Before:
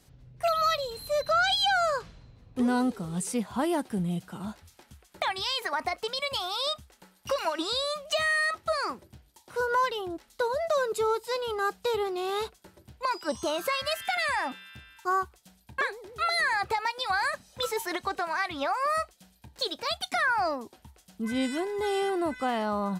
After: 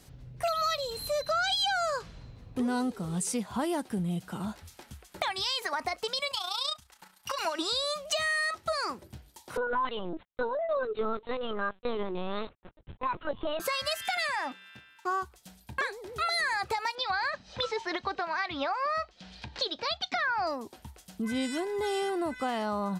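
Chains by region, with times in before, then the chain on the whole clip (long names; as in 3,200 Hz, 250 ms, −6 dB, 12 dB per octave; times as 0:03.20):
0:06.31–0:07.39: low shelf with overshoot 660 Hz −8.5 dB, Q 1.5 + amplitude modulation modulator 29 Hz, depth 45%
0:09.57–0:13.60: noise gate −53 dBFS, range −45 dB + parametric band 150 Hz +3.5 dB 0.31 octaves + linear-prediction vocoder at 8 kHz pitch kept
0:14.27–0:15.22: mu-law and A-law mismatch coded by A + high-pass filter 160 Hz + high-shelf EQ 6,900 Hz −10 dB
0:16.95–0:20.47: low-pass filter 4,800 Hz 24 dB per octave + upward compression, threshold −46 dBFS + one half of a high-frequency compander encoder only
whole clip: dynamic equaliser 6,100 Hz, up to +5 dB, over −45 dBFS, Q 0.87; downward compressor 2 to 1, threshold −39 dBFS; level +5 dB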